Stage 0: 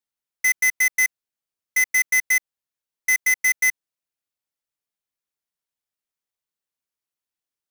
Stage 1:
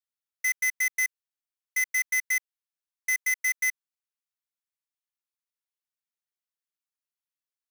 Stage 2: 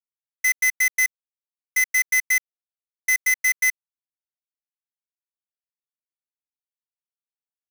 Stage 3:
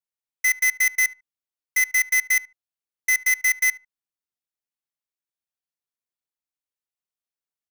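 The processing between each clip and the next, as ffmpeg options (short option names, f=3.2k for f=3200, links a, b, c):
-af "highpass=f=960:w=0.5412,highpass=f=960:w=1.3066,volume=-7dB"
-af "aeval=exprs='0.15*(cos(1*acos(clip(val(0)/0.15,-1,1)))-cos(1*PI/2))+0.00473*(cos(2*acos(clip(val(0)/0.15,-1,1)))-cos(2*PI/2))':c=same,acrusher=bits=6:mix=0:aa=0.5,volume=6dB"
-filter_complex "[0:a]asplit=2[a][b];[b]adelay=74,lowpass=f=1.5k:p=1,volume=-16.5dB,asplit=2[c][d];[d]adelay=74,lowpass=f=1.5k:p=1,volume=0.21[e];[a][c][e]amix=inputs=3:normalize=0"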